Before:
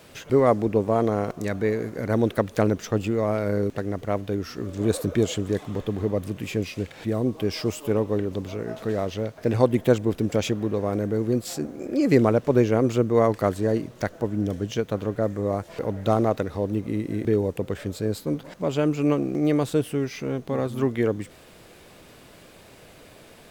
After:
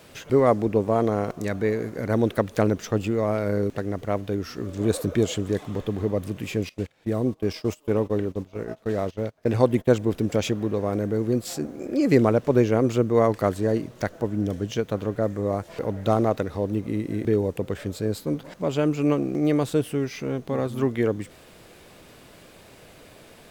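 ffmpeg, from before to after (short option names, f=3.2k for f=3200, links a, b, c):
-filter_complex "[0:a]asettb=1/sr,asplit=3[a][b][c];[a]atrim=end=6.694[d];[b]atrim=start=6.69:end=9.88,asetpts=PTS-STARTPTS,afade=t=in:d=0.004:c=qsin,afade=t=out:st=3.186:d=0.004:c=qsin,agate=range=-20dB:threshold=-32dB:ratio=16:release=100:detection=peak[e];[c]atrim=start=9.876[f];[d][e]acrossfade=d=0.004:c1=hsin:c2=qsin[g];[g][f]acrossfade=d=0.004:c1=qsin:c2=hsin"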